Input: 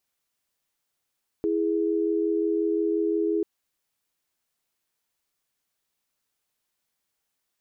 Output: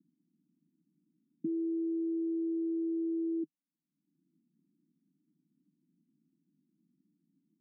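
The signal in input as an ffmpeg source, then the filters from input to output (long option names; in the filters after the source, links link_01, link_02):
-f lavfi -i "aevalsrc='0.0596*(sin(2*PI*329.63*t)+sin(2*PI*415.3*t))':duration=1.99:sample_rate=44100"
-af "acompressor=mode=upward:threshold=-34dB:ratio=2.5,asuperpass=centerf=220:order=12:qfactor=1.3"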